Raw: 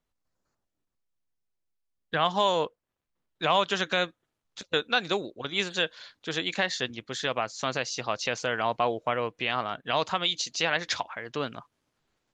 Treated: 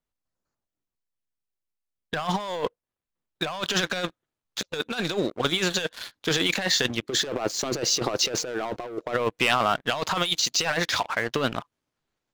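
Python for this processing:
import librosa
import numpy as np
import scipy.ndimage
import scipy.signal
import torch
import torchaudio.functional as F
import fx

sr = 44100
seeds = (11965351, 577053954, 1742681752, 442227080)

y = fx.peak_eq(x, sr, hz=360.0, db=14.0, octaves=1.1, at=(7.02, 9.13), fade=0.02)
y = fx.leveller(y, sr, passes=3)
y = fx.over_compress(y, sr, threshold_db=-21.0, ratio=-0.5)
y = y * librosa.db_to_amplitude(-3.5)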